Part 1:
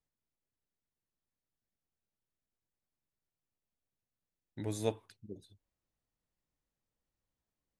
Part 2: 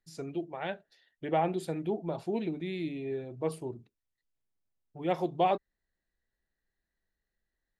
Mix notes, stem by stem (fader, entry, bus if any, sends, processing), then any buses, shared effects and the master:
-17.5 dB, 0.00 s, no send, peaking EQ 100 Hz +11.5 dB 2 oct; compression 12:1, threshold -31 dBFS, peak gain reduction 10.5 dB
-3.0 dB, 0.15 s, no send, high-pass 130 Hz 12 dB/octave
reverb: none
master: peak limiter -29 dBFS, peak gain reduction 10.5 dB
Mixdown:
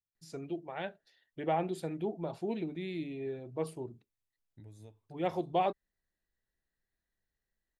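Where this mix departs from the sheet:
stem 2: missing high-pass 130 Hz 12 dB/octave; master: missing peak limiter -29 dBFS, peak gain reduction 10.5 dB

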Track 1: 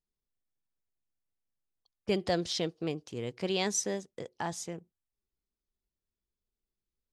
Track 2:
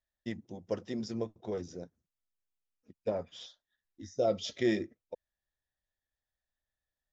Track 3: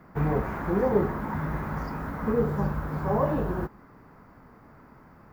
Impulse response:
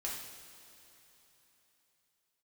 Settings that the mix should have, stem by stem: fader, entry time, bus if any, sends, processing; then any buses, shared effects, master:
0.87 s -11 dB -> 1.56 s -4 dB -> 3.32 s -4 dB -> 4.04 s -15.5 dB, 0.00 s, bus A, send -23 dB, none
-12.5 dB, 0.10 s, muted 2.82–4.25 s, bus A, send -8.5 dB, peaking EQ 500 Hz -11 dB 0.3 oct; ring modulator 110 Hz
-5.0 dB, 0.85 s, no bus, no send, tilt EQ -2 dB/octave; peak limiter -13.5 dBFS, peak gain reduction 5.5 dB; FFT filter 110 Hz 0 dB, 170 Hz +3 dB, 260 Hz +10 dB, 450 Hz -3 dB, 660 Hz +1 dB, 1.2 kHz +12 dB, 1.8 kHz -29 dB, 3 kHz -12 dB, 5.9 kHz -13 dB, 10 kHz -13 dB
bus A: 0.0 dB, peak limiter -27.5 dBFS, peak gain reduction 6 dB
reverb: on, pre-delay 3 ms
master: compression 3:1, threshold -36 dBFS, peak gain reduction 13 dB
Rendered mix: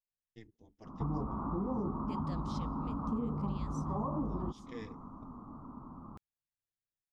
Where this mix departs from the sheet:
stem 1 -11.0 dB -> -18.5 dB; stem 2: send off

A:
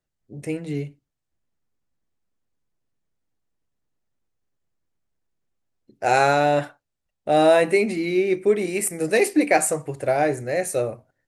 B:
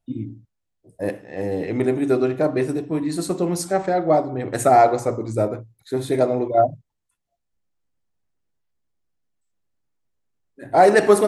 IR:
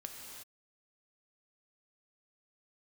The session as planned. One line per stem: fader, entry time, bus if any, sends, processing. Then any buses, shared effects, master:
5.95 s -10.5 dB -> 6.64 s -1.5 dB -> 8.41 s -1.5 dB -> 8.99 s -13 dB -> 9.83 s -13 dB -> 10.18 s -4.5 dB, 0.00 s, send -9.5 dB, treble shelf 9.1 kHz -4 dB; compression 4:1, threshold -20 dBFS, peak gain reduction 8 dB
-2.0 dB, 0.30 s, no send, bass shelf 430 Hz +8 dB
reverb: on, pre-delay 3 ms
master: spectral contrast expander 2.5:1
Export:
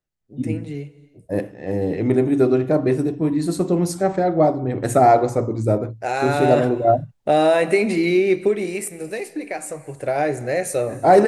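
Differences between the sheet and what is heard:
stem A -10.5 dB -> -4.0 dB; master: missing spectral contrast expander 2.5:1

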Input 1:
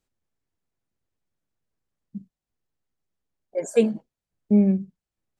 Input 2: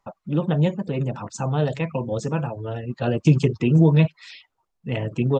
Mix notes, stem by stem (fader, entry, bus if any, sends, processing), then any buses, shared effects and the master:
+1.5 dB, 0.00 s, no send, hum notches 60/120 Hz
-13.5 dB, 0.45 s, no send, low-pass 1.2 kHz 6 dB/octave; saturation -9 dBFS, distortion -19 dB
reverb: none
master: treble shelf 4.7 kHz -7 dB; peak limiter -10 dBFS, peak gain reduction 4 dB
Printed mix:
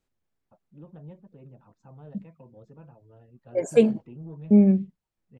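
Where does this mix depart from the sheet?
stem 2 -13.5 dB -> -23.5 dB; master: missing peak limiter -10 dBFS, peak gain reduction 4 dB

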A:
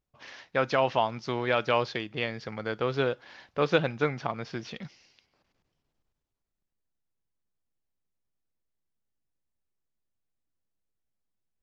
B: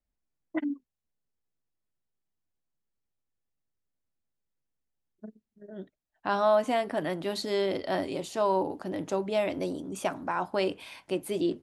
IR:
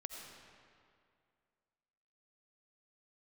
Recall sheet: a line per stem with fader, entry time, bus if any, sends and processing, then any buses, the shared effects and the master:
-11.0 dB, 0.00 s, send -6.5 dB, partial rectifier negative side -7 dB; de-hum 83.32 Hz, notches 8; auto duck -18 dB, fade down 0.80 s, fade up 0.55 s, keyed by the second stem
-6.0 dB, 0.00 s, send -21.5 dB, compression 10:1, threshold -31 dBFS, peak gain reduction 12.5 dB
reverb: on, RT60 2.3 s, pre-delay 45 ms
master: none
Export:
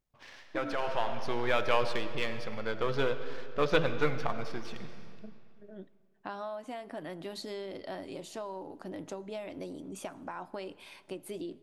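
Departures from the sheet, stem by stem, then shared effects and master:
stem A -11.0 dB -> -3.0 dB; reverb return +6.5 dB

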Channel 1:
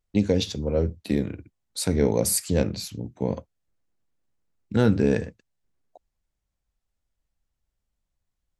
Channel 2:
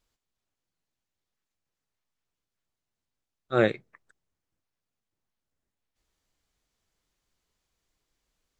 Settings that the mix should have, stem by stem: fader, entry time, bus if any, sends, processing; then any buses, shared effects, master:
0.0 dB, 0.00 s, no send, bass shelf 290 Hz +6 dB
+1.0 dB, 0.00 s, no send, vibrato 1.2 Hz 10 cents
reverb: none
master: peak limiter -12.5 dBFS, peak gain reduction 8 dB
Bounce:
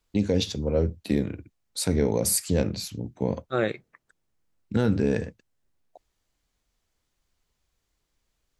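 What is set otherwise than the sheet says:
stem 1: missing bass shelf 290 Hz +6 dB; stem 2: missing vibrato 1.2 Hz 10 cents

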